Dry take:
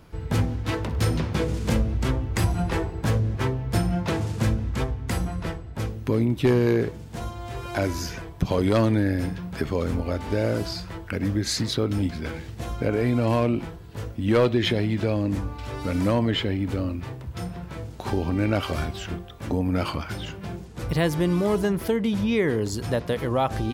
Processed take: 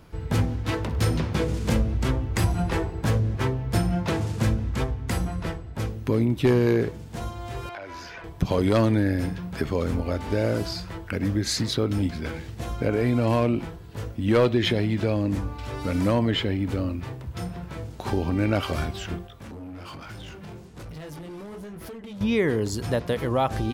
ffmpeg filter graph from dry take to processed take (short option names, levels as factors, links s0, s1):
-filter_complex "[0:a]asettb=1/sr,asplit=3[s0][s1][s2];[s0]atrim=end=7.694[s3];[s1]atrim=start=7.69:end=8.24,asetpts=PTS-STARTPTS,afade=t=in:d=0.004:c=qsin,afade=t=out:st=0.546:d=0.004:c=qsin,acrossover=split=490 3900:gain=0.158 1 0.1[s4][s5][s6];[s4][s5][s6]amix=inputs=3:normalize=0,acompressor=threshold=0.0224:ratio=12:attack=3.2:release=140:knee=1:detection=peak[s7];[s2]atrim=start=8.236[s8];[s3][s7]acrossfade=d=0.004:c1=hsin:c2=qsin[s9];[s9][s8]acrossfade=d=0.004:c1=qsin:c2=hsin,asettb=1/sr,asplit=3[s10][s11][s12];[s10]atrim=end=19.274[s13];[s11]atrim=start=19.27:end=22.21,asetpts=PTS-STARTPTS,afade=t=in:d=0.004:c=qsin,afade=t=out:st=2.936:d=0.004:c=qsin,flanger=delay=18.5:depth=6.8:speed=1.2,acompressor=threshold=0.0224:ratio=8:attack=3.2:release=140:knee=1:detection=peak,volume=59.6,asoftclip=hard,volume=0.0168[s14];[s12]atrim=start=22.206[s15];[s13][s14]acrossfade=d=0.004:c1=hsin:c2=qsin[s16];[s16][s15]acrossfade=d=0.004:c1=qsin:c2=hsin"